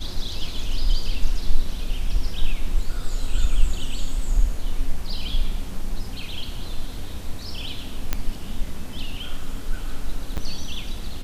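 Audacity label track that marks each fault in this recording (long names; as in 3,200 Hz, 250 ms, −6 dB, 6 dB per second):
8.130000	8.130000	click −7 dBFS
10.370000	10.380000	drop-out 8 ms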